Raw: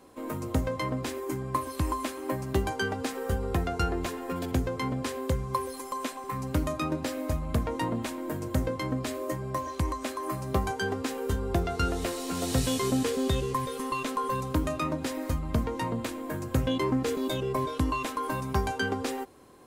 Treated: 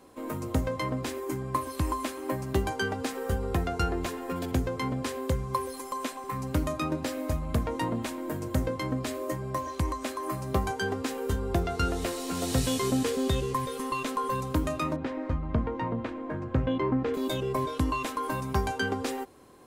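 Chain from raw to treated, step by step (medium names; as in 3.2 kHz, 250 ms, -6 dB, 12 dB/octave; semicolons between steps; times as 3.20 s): 14.96–17.14 s: low-pass 2.1 kHz 12 dB/octave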